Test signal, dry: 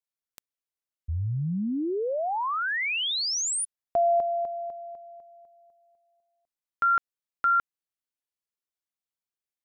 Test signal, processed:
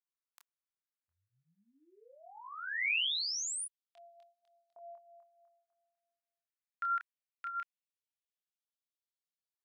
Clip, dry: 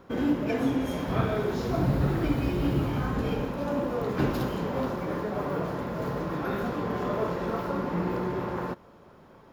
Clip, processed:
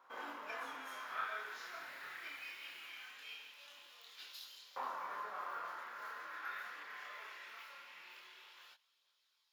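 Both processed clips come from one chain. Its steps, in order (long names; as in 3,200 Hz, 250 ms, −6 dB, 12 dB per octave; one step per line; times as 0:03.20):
auto-filter high-pass saw up 0.21 Hz 980–4,200 Hz
multi-voice chorus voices 2, 0.22 Hz, delay 27 ms, depth 4 ms
level −7.5 dB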